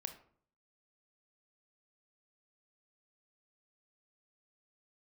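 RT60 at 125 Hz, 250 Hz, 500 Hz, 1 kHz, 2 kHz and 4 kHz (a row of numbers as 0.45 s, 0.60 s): 0.75 s, 0.65 s, 0.60 s, 0.55 s, 0.40 s, 0.30 s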